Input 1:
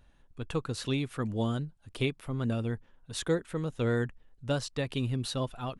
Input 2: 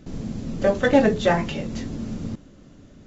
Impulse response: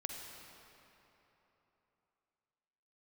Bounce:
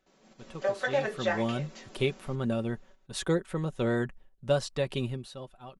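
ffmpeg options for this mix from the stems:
-filter_complex "[0:a]equalizer=f=620:w=0.98:g=4.5,volume=-0.5dB,afade=t=in:st=0.83:d=0.79:silence=0.251189,afade=t=out:st=5.05:d=0.21:silence=0.251189[a];[1:a]highpass=660,highshelf=f=5k:g=-5,volume=-7dB[b];[a][b]amix=inputs=2:normalize=0,agate=range=-10dB:threshold=-52dB:ratio=16:detection=peak,aecho=1:1:5.3:0.48"

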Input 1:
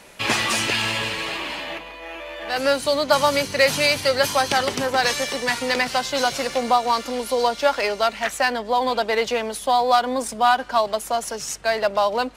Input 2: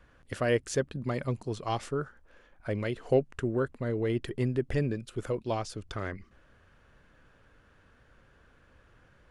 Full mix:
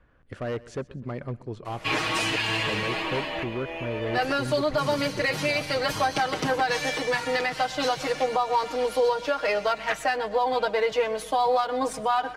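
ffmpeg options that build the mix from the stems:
-filter_complex "[0:a]aecho=1:1:6.4:0.99,adelay=1650,volume=-2.5dB,asplit=2[a][b];[b]volume=-19.5dB[c];[1:a]highshelf=f=4.9k:g=-6.5,asoftclip=type=hard:threshold=-25dB,volume=-1dB,asplit=2[d][e];[e]volume=-20dB[f];[c][f]amix=inputs=2:normalize=0,aecho=0:1:126|252|378|504|630|756:1|0.45|0.202|0.0911|0.041|0.0185[g];[a][d][g]amix=inputs=3:normalize=0,highshelf=f=4.3k:g=-11,alimiter=limit=-14.5dB:level=0:latency=1:release=220"

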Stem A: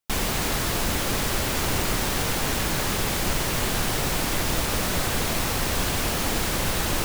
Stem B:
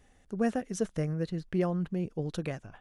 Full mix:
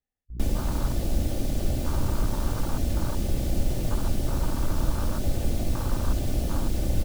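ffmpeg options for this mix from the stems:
-filter_complex "[0:a]aecho=1:1:3.4:0.41,aeval=exprs='val(0)+0.0158*(sin(2*PI*60*n/s)+sin(2*PI*2*60*n/s)/2+sin(2*PI*3*60*n/s)/3+sin(2*PI*4*60*n/s)/4+sin(2*PI*5*60*n/s)/5)':c=same,adelay=300,volume=3dB[a];[1:a]alimiter=level_in=4.5dB:limit=-24dB:level=0:latency=1,volume=-4.5dB,volume=-14dB[b];[a][b]amix=inputs=2:normalize=0,afwtdn=0.0891,acrossover=split=180|3000[c][d][e];[d]acompressor=threshold=-34dB:ratio=6[f];[c][f][e]amix=inputs=3:normalize=0"

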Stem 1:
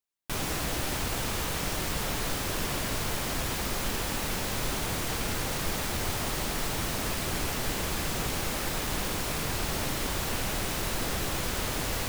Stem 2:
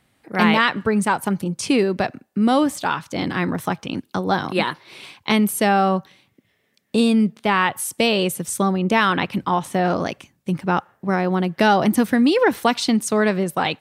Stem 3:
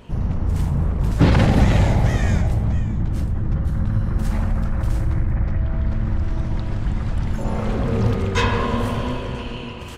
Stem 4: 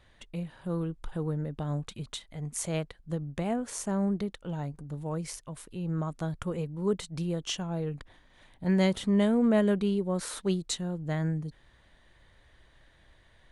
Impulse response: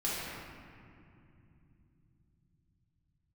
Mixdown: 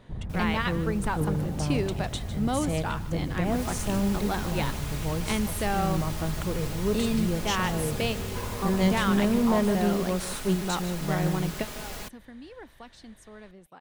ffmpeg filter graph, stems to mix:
-filter_complex "[0:a]aecho=1:1:4.8:0.48,volume=-8dB,afade=t=in:st=3.42:d=0.2:silence=0.251189[a];[1:a]volume=-11dB,asplit=2[b][c];[c]volume=-18dB[d];[2:a]lowpass=1.2k,acompressor=threshold=-21dB:ratio=6,volume=-9.5dB[e];[3:a]deesser=0.65,asoftclip=type=tanh:threshold=-21dB,volume=2.5dB,asplit=3[f][g][h];[g]volume=-12dB[i];[h]apad=whole_len=608878[j];[b][j]sidechaingate=range=-48dB:threshold=-49dB:ratio=16:detection=peak[k];[d][i]amix=inputs=2:normalize=0,aecho=0:1:153:1[l];[a][k][e][f][l]amix=inputs=5:normalize=0"

